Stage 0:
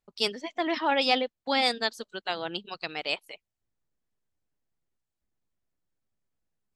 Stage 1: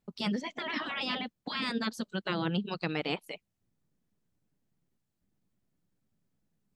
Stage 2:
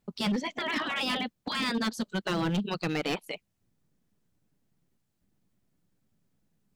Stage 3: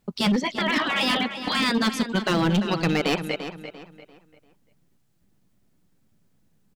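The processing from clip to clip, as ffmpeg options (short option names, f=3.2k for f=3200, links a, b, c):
-filter_complex "[0:a]acrossover=split=2500[a][b];[b]acompressor=threshold=-42dB:ratio=4:attack=1:release=60[c];[a][c]amix=inputs=2:normalize=0,afftfilt=real='re*lt(hypot(re,im),0.112)':imag='im*lt(hypot(re,im),0.112)':win_size=1024:overlap=0.75,equalizer=f=180:w=0.75:g=13.5,volume=1.5dB"
-af "volume=28.5dB,asoftclip=hard,volume=-28.5dB,volume=4.5dB"
-filter_complex "[0:a]asplit=2[a][b];[b]adelay=344,lowpass=f=4.5k:p=1,volume=-10dB,asplit=2[c][d];[d]adelay=344,lowpass=f=4.5k:p=1,volume=0.35,asplit=2[e][f];[f]adelay=344,lowpass=f=4.5k:p=1,volume=0.35,asplit=2[g][h];[h]adelay=344,lowpass=f=4.5k:p=1,volume=0.35[i];[a][c][e][g][i]amix=inputs=5:normalize=0,volume=7dB"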